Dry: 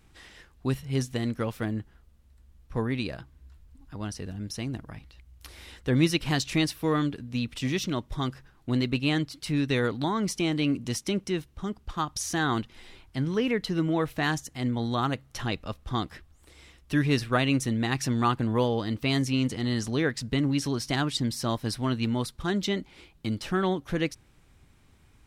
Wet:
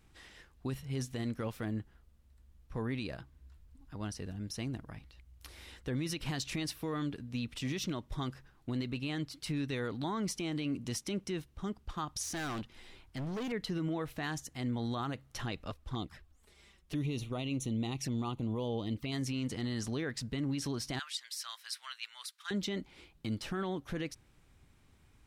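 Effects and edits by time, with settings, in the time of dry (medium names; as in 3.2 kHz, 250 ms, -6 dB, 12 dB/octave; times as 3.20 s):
12.23–13.52 s: hard clipper -30.5 dBFS
15.70–19.12 s: touch-sensitive flanger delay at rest 6.1 ms, full sweep at -24.5 dBFS
20.99–22.51 s: high-pass 1.4 kHz 24 dB/octave
whole clip: peak limiter -21.5 dBFS; trim -5 dB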